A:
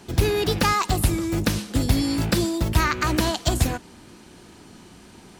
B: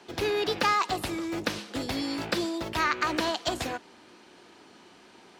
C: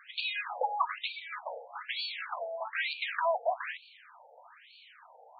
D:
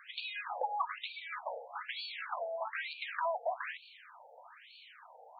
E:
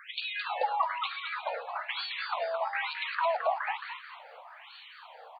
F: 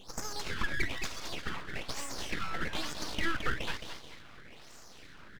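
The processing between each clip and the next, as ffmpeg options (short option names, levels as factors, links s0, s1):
-filter_complex "[0:a]highpass=f=110:p=1,acrossover=split=300 5500:gain=0.2 1 0.224[s0][s1][s2];[s0][s1][s2]amix=inputs=3:normalize=0,volume=0.75"
-af "asoftclip=type=tanh:threshold=0.075,afftfilt=real='re*between(b*sr/1024,610*pow(3300/610,0.5+0.5*sin(2*PI*1.1*pts/sr))/1.41,610*pow(3300/610,0.5+0.5*sin(2*PI*1.1*pts/sr))*1.41)':imag='im*between(b*sr/1024,610*pow(3300/610,0.5+0.5*sin(2*PI*1.1*pts/sr))/1.41,610*pow(3300/610,0.5+0.5*sin(2*PI*1.1*pts/sr))*1.41)':win_size=1024:overlap=0.75,volume=1.88"
-filter_complex "[0:a]acrossover=split=540|1100[s0][s1][s2];[s0]acompressor=threshold=0.00447:ratio=4[s3];[s1]acompressor=threshold=0.0178:ratio=4[s4];[s2]acompressor=threshold=0.01:ratio=4[s5];[s3][s4][s5]amix=inputs=3:normalize=0"
-filter_complex "[0:a]asplit=5[s0][s1][s2][s3][s4];[s1]adelay=217,afreqshift=140,volume=0.447[s5];[s2]adelay=434,afreqshift=280,volume=0.151[s6];[s3]adelay=651,afreqshift=420,volume=0.0519[s7];[s4]adelay=868,afreqshift=560,volume=0.0176[s8];[s0][s5][s6][s7][s8]amix=inputs=5:normalize=0,volume=1.88"
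-af "aeval=exprs='abs(val(0))':c=same"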